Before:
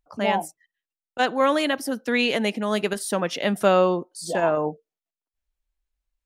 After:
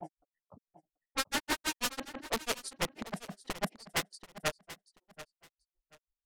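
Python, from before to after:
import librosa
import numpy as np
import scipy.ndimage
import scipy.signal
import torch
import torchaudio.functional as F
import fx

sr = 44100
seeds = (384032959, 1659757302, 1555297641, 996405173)

p1 = (np.mod(10.0 ** (19.5 / 20.0) * x + 1.0, 2.0) - 1.0) / 10.0 ** (19.5 / 20.0)
p2 = fx.granulator(p1, sr, seeds[0], grain_ms=94.0, per_s=6.1, spray_ms=487.0, spread_st=0)
p3 = fx.env_lowpass(p2, sr, base_hz=390.0, full_db=-29.5)
p4 = p3 + fx.echo_feedback(p3, sr, ms=734, feedback_pct=22, wet_db=-15.5, dry=0)
y = p4 * librosa.db_to_amplitude(-3.0)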